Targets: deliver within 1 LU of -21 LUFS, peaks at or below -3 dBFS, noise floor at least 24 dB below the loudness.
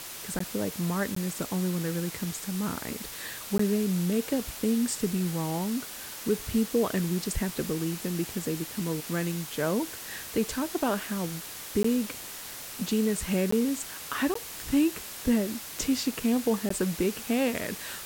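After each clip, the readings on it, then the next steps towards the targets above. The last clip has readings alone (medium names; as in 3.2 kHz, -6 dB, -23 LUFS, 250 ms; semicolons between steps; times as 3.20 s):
dropouts 7; longest dropout 14 ms; noise floor -41 dBFS; noise floor target -54 dBFS; loudness -29.5 LUFS; peak level -15.0 dBFS; loudness target -21.0 LUFS
-> interpolate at 0.39/1.15/3.58/11.83/13.51/14.34/16.69 s, 14 ms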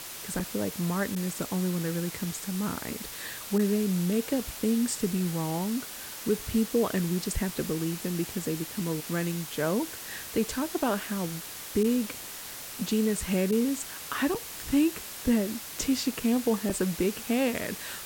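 dropouts 0; noise floor -41 dBFS; noise floor target -54 dBFS
-> noise print and reduce 13 dB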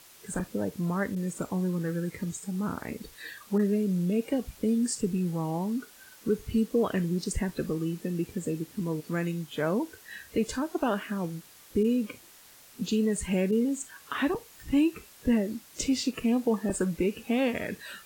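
noise floor -54 dBFS; loudness -30.0 LUFS; peak level -15.5 dBFS; loudness target -21.0 LUFS
-> trim +9 dB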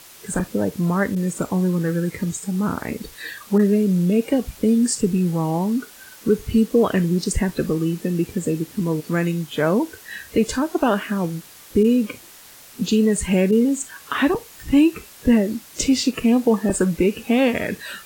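loudness -21.0 LUFS; peak level -6.5 dBFS; noise floor -45 dBFS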